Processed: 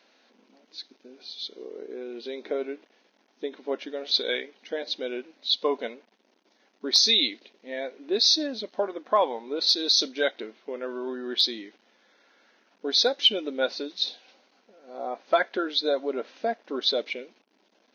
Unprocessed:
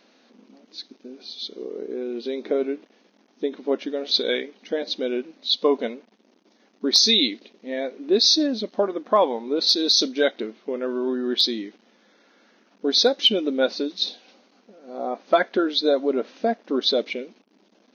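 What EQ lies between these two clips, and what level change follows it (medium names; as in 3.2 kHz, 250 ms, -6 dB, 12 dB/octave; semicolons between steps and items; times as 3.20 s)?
high-pass 790 Hz 6 dB/octave; treble shelf 4.7 kHz -6 dB; band-stop 1.2 kHz, Q 14; 0.0 dB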